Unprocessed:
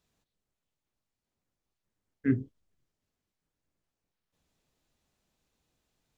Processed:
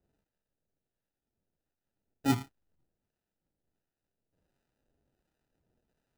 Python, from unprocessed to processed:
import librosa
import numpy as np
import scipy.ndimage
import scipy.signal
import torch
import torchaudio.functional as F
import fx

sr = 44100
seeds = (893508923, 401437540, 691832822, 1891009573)

y = fx.sample_hold(x, sr, seeds[0], rate_hz=1100.0, jitter_pct=0)
y = fx.harmonic_tremolo(y, sr, hz=1.4, depth_pct=50, crossover_hz=800.0)
y = y * librosa.db_to_amplitude(1.0)